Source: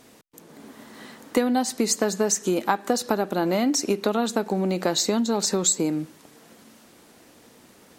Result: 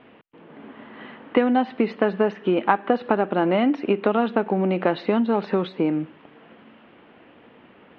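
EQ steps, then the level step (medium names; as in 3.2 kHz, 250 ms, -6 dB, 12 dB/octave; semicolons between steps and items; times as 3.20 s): elliptic low-pass 3 kHz, stop band 60 dB; bass shelf 71 Hz -9 dB; +4.0 dB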